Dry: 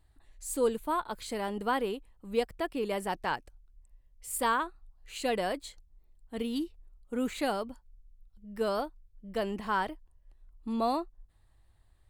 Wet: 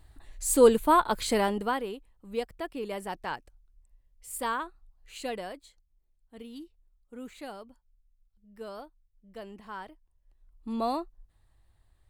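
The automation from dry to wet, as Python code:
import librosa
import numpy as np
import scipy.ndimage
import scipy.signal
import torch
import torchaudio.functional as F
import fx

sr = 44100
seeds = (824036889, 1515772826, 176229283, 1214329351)

y = fx.gain(x, sr, db=fx.line((1.38, 9.5), (1.83, -3.0), (5.21, -3.0), (5.67, -11.0), (9.91, -11.0), (10.73, -0.5)))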